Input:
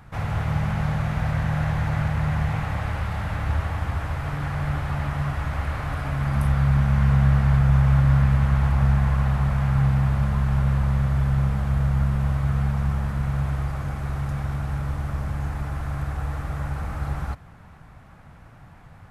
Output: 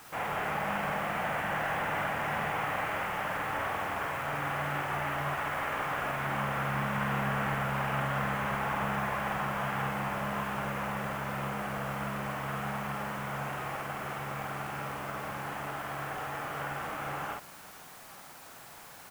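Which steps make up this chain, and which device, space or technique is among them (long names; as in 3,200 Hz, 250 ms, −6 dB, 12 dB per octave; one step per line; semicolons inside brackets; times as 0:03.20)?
army field radio (band-pass filter 370–3,300 Hz; variable-slope delta modulation 16 kbit/s; white noise bed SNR 19 dB)
double-tracking delay 49 ms −2.5 dB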